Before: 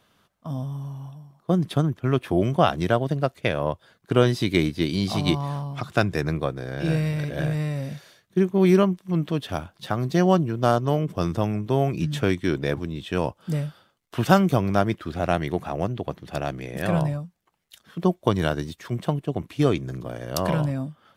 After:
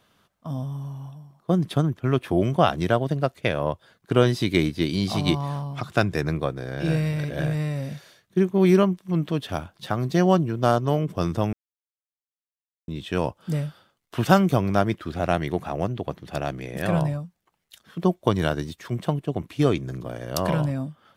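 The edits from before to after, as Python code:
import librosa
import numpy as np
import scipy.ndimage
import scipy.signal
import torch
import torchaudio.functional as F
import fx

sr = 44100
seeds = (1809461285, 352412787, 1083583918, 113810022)

y = fx.edit(x, sr, fx.silence(start_s=11.53, length_s=1.35), tone=tone)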